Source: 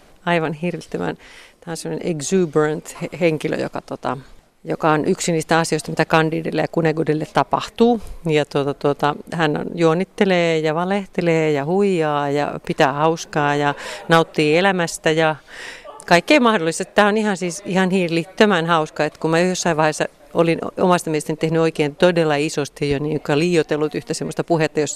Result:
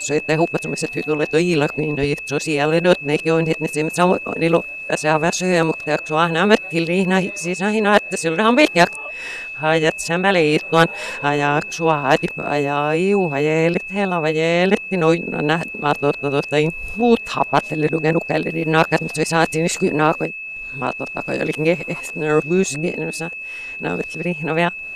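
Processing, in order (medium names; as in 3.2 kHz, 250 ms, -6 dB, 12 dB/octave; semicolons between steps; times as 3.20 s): reverse the whole clip; whistle 2.6 kHz -28 dBFS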